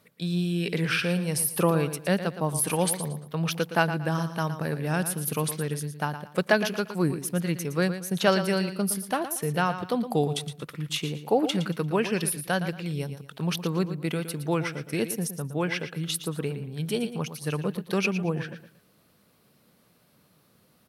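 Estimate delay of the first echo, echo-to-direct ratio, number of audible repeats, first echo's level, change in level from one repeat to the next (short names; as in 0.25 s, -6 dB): 0.115 s, -10.5 dB, 3, -11.0 dB, -11.0 dB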